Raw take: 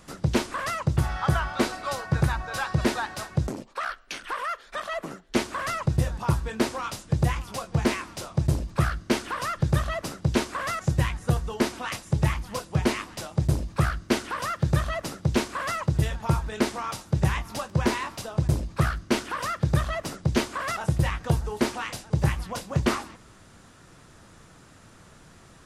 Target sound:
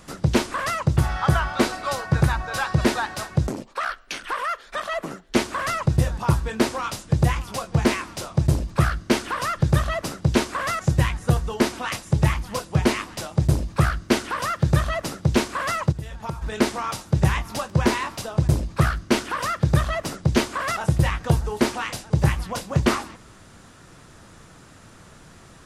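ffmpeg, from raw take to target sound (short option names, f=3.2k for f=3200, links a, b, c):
-filter_complex "[0:a]asplit=3[a][b][c];[a]afade=t=out:st=15.91:d=0.02[d];[b]acompressor=threshold=-31dB:ratio=12,afade=t=in:st=15.91:d=0.02,afade=t=out:st=16.41:d=0.02[e];[c]afade=t=in:st=16.41:d=0.02[f];[d][e][f]amix=inputs=3:normalize=0,volume=4dB"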